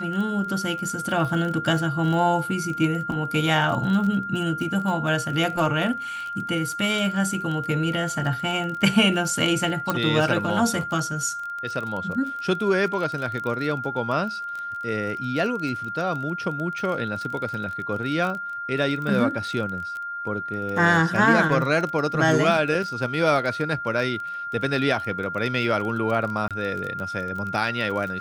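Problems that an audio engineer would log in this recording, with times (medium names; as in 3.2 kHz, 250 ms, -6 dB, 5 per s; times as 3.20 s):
crackle 24 per s -29 dBFS
whine 1.4 kHz -29 dBFS
9.90 s: pop
26.48–26.51 s: dropout 27 ms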